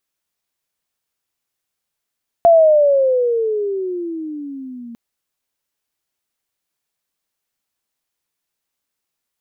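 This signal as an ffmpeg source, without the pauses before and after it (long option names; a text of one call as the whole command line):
ffmpeg -f lavfi -i "aevalsrc='pow(10,(-5.5-25*t/2.5)/20)*sin(2*PI*688*2.5/(-19*log(2)/12)*(exp(-19*log(2)/12*t/2.5)-1))':duration=2.5:sample_rate=44100" out.wav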